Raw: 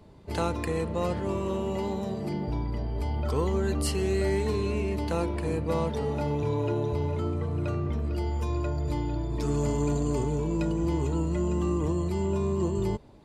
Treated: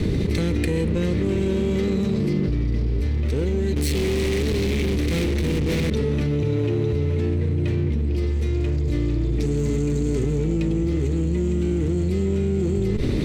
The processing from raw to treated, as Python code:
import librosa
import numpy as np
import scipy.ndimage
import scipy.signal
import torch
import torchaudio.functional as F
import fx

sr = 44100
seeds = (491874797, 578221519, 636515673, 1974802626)

y = fx.lower_of_two(x, sr, delay_ms=0.49)
y = fx.fuzz(y, sr, gain_db=43.0, gate_db=-48.0, at=(3.76, 5.9))
y = fx.high_shelf(y, sr, hz=5400.0, db=-8.0)
y = 10.0 ** (-13.0 / 20.0) * np.tanh(y / 10.0 ** (-13.0 / 20.0))
y = fx.band_shelf(y, sr, hz=990.0, db=-14.0, octaves=1.7)
y = fx.env_flatten(y, sr, amount_pct=100)
y = F.gain(torch.from_numpy(y), -5.0).numpy()